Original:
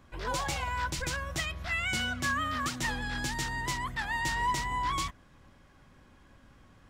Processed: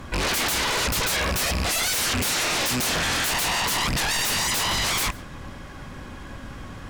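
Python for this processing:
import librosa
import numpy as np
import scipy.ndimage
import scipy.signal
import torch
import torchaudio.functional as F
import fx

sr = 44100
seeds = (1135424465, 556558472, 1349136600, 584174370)

y = fx.rattle_buzz(x, sr, strikes_db=-45.0, level_db=-30.0)
y = fx.fold_sine(y, sr, drive_db=18, ceiling_db=-19.0)
y = y + 10.0 ** (-23.5 / 20.0) * np.pad(y, (int(141 * sr / 1000.0), 0))[:len(y)]
y = F.gain(torch.from_numpy(y), -2.0).numpy()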